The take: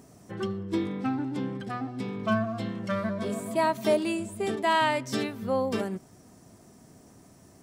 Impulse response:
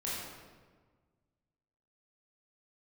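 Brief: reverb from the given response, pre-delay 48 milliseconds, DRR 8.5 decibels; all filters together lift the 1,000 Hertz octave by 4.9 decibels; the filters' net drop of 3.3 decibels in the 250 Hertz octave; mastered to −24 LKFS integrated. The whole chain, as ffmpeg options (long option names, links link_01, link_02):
-filter_complex "[0:a]equalizer=frequency=250:width_type=o:gain=-4.5,equalizer=frequency=1000:width_type=o:gain=5.5,asplit=2[link_01][link_02];[1:a]atrim=start_sample=2205,adelay=48[link_03];[link_02][link_03]afir=irnorm=-1:irlink=0,volume=-12dB[link_04];[link_01][link_04]amix=inputs=2:normalize=0,volume=3dB"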